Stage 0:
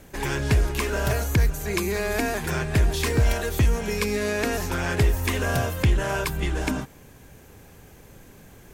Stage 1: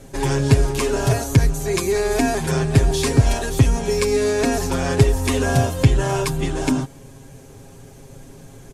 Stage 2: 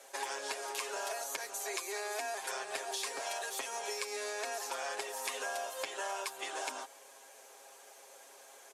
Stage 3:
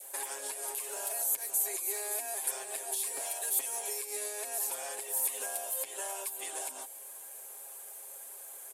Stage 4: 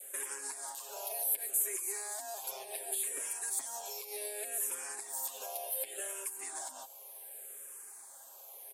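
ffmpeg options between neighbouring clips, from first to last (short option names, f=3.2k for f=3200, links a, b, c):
-af "lowpass=f=11k:w=0.5412,lowpass=f=11k:w=1.3066,equalizer=f=1.9k:w=0.72:g=-7.5,aecho=1:1:7.4:0.74,volume=5.5dB"
-af "highpass=f=590:w=0.5412,highpass=f=590:w=1.3066,acompressor=threshold=-31dB:ratio=6,volume=-4.5dB"
-af "adynamicequalizer=threshold=0.00158:dfrequency=1300:dqfactor=1.7:tfrequency=1300:tqfactor=1.7:attack=5:release=100:ratio=0.375:range=3.5:mode=cutabove:tftype=bell,alimiter=level_in=5.5dB:limit=-24dB:level=0:latency=1:release=127,volume=-5.5dB,aexciter=amount=7.4:drive=6.4:freq=8.2k,volume=-1.5dB"
-filter_complex "[0:a]asplit=2[a][b];[b]afreqshift=-0.67[c];[a][c]amix=inputs=2:normalize=1"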